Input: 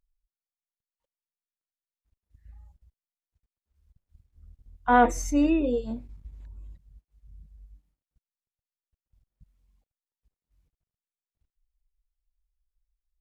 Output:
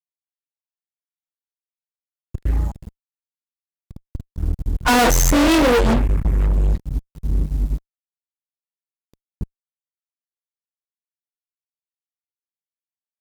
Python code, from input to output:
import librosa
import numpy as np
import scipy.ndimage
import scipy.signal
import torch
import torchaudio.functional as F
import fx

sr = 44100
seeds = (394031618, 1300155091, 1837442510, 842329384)

y = fx.spec_quant(x, sr, step_db=15)
y = fx.graphic_eq(y, sr, hz=(250, 500, 1000, 2000, 4000), db=(-7, -5, 8, 6, -10), at=(5.3, 6.53))
y = fx.fuzz(y, sr, gain_db=47.0, gate_db=-56.0)